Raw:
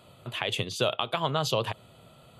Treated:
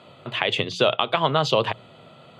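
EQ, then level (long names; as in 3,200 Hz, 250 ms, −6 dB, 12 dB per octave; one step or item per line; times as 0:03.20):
band-pass filter 140–4,200 Hz
parametric band 2,000 Hz +3 dB 0.2 octaves
mains-hum notches 60/120/180 Hz
+7.5 dB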